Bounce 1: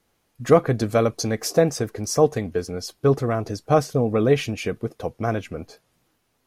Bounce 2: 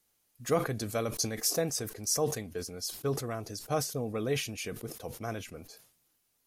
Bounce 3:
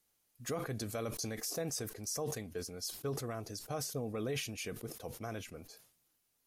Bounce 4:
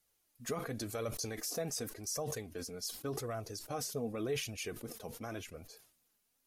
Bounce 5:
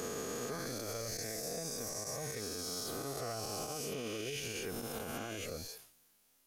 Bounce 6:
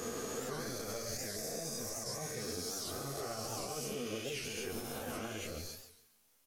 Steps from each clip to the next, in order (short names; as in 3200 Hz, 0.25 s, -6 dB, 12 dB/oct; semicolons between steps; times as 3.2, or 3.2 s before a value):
pre-emphasis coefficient 0.8; sustainer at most 98 dB/s
limiter -25 dBFS, peak gain reduction 9.5 dB; gain -3.5 dB
flange 0.89 Hz, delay 1.3 ms, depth 3.7 ms, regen +38%; gain +4 dB
spectral swells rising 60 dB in 2.81 s; compressor, threshold -39 dBFS, peak gain reduction 11 dB; limiter -34 dBFS, peak gain reduction 9 dB; gain +3.5 dB
on a send: feedback echo 0.142 s, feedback 27%, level -10.5 dB; on the sum: chorus voices 4, 1.5 Hz, delay 11 ms, depth 3 ms; record warp 78 rpm, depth 160 cents; gain +2.5 dB